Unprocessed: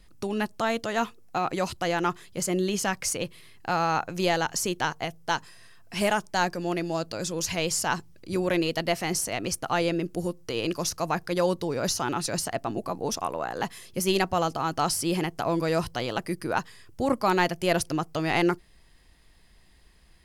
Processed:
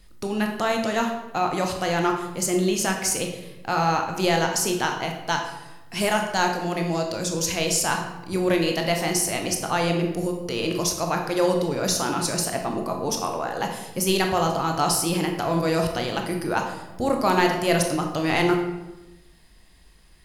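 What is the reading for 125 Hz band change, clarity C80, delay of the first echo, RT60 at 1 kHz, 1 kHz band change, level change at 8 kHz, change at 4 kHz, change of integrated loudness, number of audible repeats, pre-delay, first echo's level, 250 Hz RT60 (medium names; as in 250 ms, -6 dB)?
+4.5 dB, 8.5 dB, no echo, 0.95 s, +3.5 dB, +5.0 dB, +4.0 dB, +4.0 dB, no echo, 20 ms, no echo, 1.3 s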